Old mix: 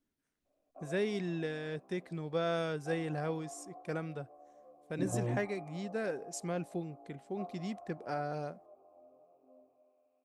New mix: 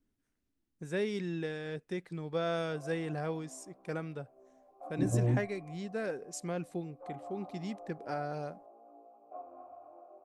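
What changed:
second voice: add spectral tilt −2.5 dB per octave
background: entry +1.95 s

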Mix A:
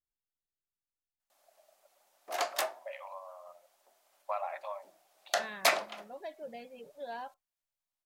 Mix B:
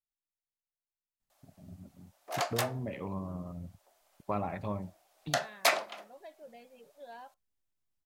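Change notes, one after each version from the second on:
first voice: remove linear-phase brick-wall high-pass 530 Hz
second voice −7.0 dB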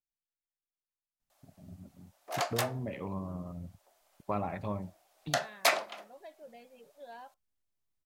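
nothing changed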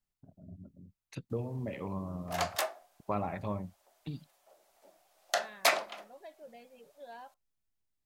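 first voice: entry −1.20 s

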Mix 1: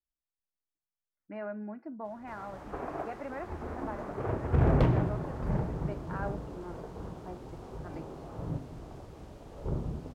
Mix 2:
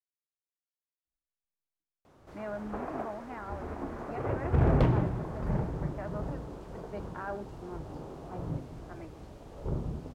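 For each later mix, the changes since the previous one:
speech: entry +1.05 s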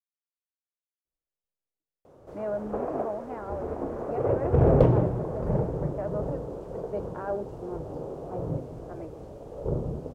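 master: add octave-band graphic EQ 125/500/2,000/4,000 Hz +4/+12/−5/−4 dB

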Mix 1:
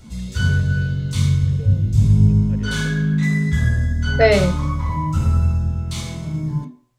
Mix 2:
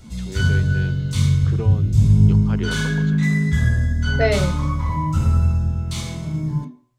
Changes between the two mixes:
first voice: remove formant filter e
second voice −5.5 dB

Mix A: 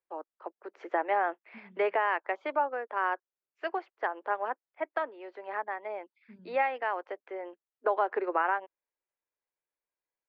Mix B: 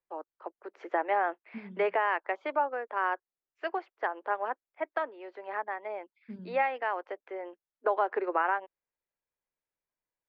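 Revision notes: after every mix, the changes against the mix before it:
second voice +10.0 dB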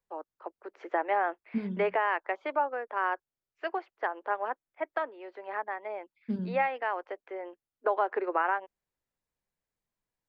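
second voice +11.0 dB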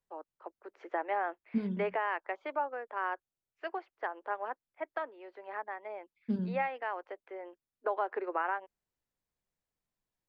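first voice −5.0 dB

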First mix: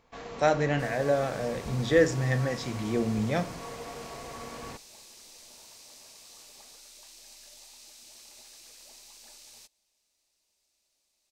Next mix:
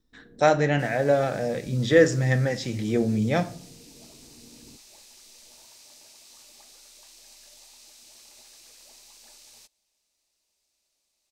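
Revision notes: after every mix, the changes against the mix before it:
speech +4.5 dB
first sound: add transistor ladder low-pass 360 Hz, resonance 45%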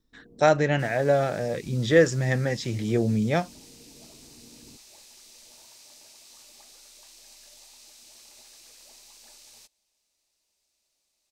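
speech +4.0 dB
reverb: off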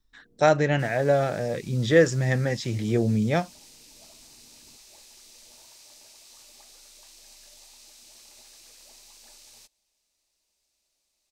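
first sound −11.0 dB
master: add low-shelf EQ 69 Hz +5.5 dB

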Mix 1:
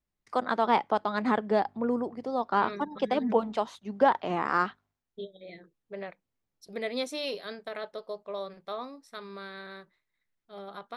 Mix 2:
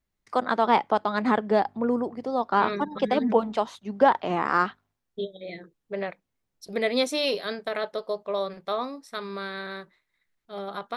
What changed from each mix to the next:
first voice +3.5 dB
second voice +8.0 dB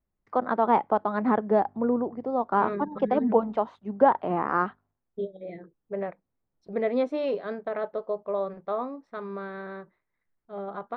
first voice: add high-shelf EQ 6,300 Hz +11 dB
master: add low-pass filter 1,200 Hz 12 dB per octave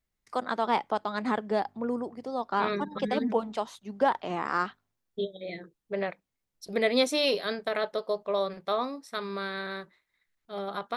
first voice −6.0 dB
master: remove low-pass filter 1,200 Hz 12 dB per octave

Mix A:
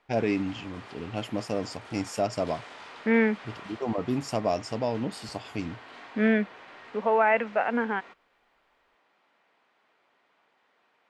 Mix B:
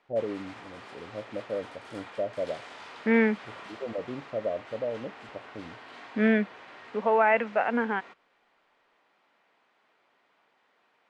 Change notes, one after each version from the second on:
first voice: add transistor ladder low-pass 590 Hz, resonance 75%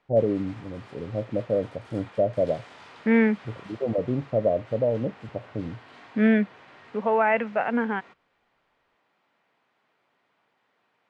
first voice +7.0 dB
background −3.0 dB
master: add parametric band 120 Hz +10 dB 1.5 octaves

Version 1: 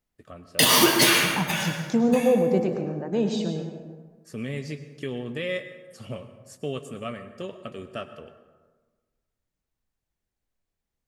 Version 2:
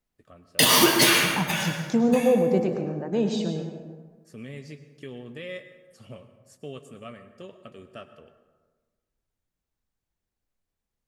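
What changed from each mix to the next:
first voice −7.5 dB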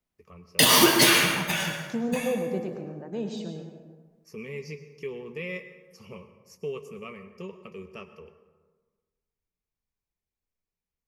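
first voice: add EQ curve with evenly spaced ripples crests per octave 0.81, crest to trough 16 dB
second voice −8.0 dB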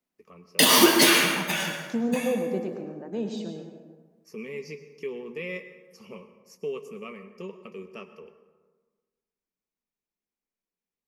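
master: add low shelf with overshoot 150 Hz −13 dB, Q 1.5

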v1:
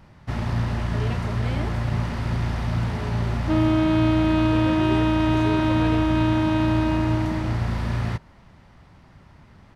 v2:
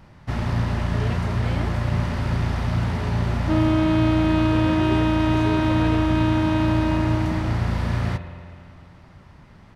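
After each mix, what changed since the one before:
reverb: on, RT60 2.6 s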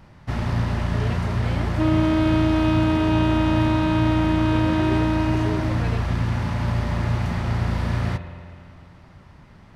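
second sound: entry −1.70 s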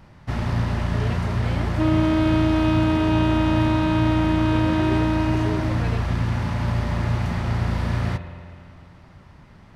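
nothing changed

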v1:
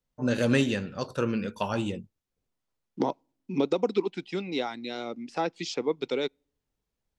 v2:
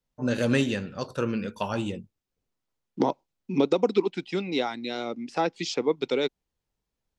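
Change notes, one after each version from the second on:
second voice +3.5 dB
reverb: off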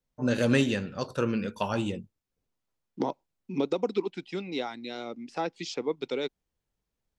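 second voice −5.5 dB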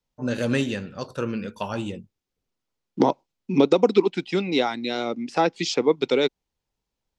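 second voice +10.5 dB

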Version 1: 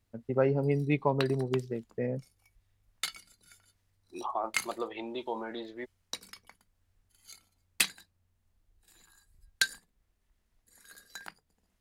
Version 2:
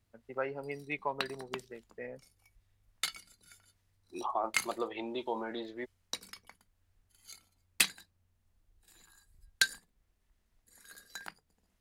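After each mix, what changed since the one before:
first voice: add resonant band-pass 1,800 Hz, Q 0.88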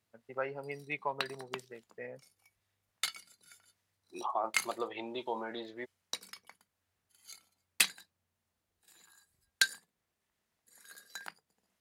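background: add high-pass filter 180 Hz 12 dB per octave
master: add parametric band 280 Hz −4.5 dB 0.99 octaves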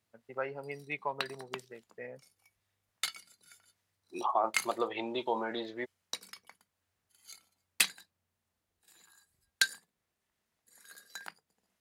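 second voice +4.5 dB

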